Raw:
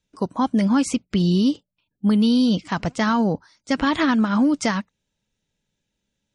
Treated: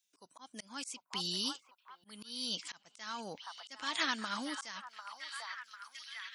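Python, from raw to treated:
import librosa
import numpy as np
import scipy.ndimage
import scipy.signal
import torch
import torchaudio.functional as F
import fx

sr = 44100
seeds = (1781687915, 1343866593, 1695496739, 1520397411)

y = np.diff(x, prepend=0.0)
y = fx.echo_stepped(y, sr, ms=747, hz=1000.0, octaves=0.7, feedback_pct=70, wet_db=-6.5)
y = fx.auto_swell(y, sr, attack_ms=367.0)
y = y * librosa.db_to_amplitude(3.5)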